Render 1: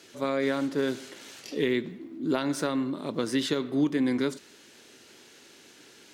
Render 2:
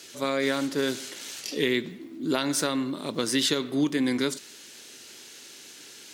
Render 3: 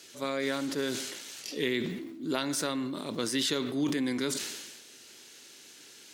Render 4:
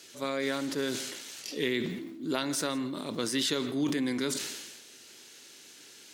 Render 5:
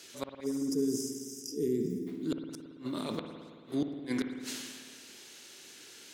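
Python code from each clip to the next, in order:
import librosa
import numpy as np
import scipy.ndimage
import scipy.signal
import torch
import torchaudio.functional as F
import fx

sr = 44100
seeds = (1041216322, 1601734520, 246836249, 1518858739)

y1 = fx.high_shelf(x, sr, hz=2600.0, db=11.5)
y2 = fx.sustainer(y1, sr, db_per_s=40.0)
y2 = y2 * 10.0 ** (-5.5 / 20.0)
y3 = y2 + 10.0 ** (-21.0 / 20.0) * np.pad(y2, (int(166 * sr / 1000.0), 0))[:len(y2)]
y4 = fx.spec_box(y3, sr, start_s=0.44, length_s=1.63, low_hz=490.0, high_hz=4800.0, gain_db=-28)
y4 = fx.gate_flip(y4, sr, shuts_db=-21.0, range_db=-38)
y4 = fx.rev_spring(y4, sr, rt60_s=1.9, pass_ms=(55,), chirp_ms=50, drr_db=5.5)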